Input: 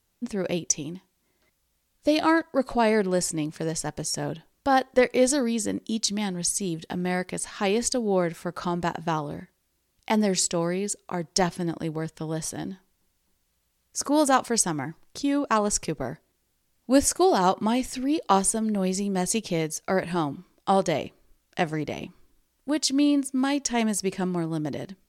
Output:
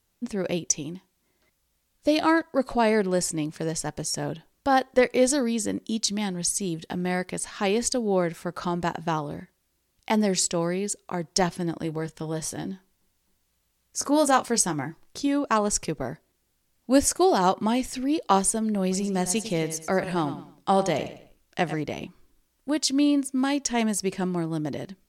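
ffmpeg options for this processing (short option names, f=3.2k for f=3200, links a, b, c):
-filter_complex "[0:a]asettb=1/sr,asplit=3[a][b][c];[a]atrim=end=11.834[d];[b]atrim=start=11.83:end=15.27,asetpts=PTS-STARTPTS,afade=t=in:d=0.004:c=qsin,afade=t=out:st=3.436:d=0.004:c=qsin,asplit=2[e][f];[f]adelay=21,volume=-10.5dB[g];[e][g]amix=inputs=2:normalize=0,atrim=end_sample=151704[h];[c]atrim=start=15.266[i];[d][h]acrossfade=d=0.004:c1=hsin:c2=qsin[j];[j][i]acrossfade=d=0.004:c1=qsin:c2=hsin,asettb=1/sr,asplit=3[k][l][m];[k]atrim=end=18.814[n];[l]atrim=start=18.81:end=21.8,asetpts=PTS-STARTPTS,afade=t=in:d=0.004:c=qsin,afade=t=out:st=2.986:d=0.004:c=qsin,aecho=1:1:102|204|306:0.251|0.0779|0.0241,atrim=end_sample=131859[o];[m]atrim=start=21.796[p];[n][o]acrossfade=d=0.004:c1=hsin:c2=qsin[q];[q][p]acrossfade=d=0.004:c1=qsin:c2=hsin"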